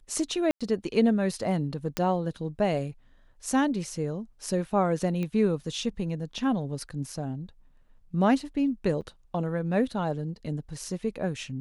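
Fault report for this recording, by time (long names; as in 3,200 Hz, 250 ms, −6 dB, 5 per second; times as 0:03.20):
0:00.51–0:00.61: drop-out 96 ms
0:01.97: click −12 dBFS
0:05.23: click −21 dBFS
0:09.01–0:09.02: drop-out 7.1 ms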